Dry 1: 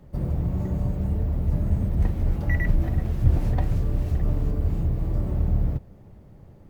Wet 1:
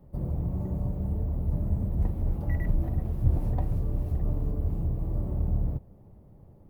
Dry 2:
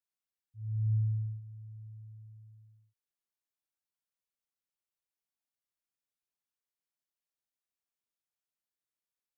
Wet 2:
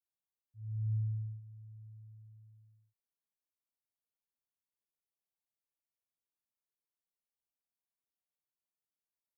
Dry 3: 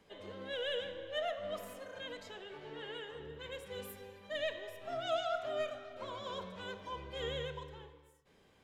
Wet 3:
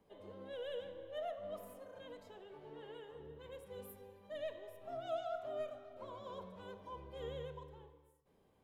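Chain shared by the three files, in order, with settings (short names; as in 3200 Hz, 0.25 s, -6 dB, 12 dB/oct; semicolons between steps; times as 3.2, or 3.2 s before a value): band shelf 3300 Hz -9.5 dB 2.8 oct; gain -4.5 dB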